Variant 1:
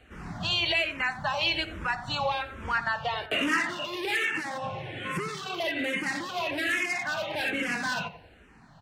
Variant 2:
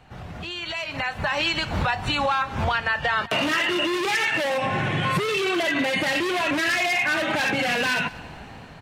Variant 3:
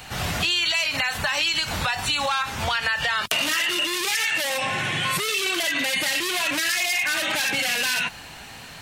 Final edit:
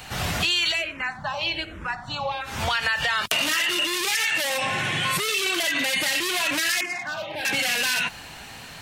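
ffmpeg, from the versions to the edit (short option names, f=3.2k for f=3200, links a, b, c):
-filter_complex "[0:a]asplit=2[a][b];[2:a]asplit=3[c][d][e];[c]atrim=end=0.84[f];[a]atrim=start=0.68:end=2.56[g];[d]atrim=start=2.4:end=6.812[h];[b]atrim=start=6.808:end=7.452[i];[e]atrim=start=7.448[j];[f][g]acrossfade=d=0.16:c1=tri:c2=tri[k];[k][h]acrossfade=d=0.16:c1=tri:c2=tri[l];[l][i]acrossfade=d=0.004:c1=hsin:c2=hsin[m];[m][j]acrossfade=d=0.004:c1=hsin:c2=hsin"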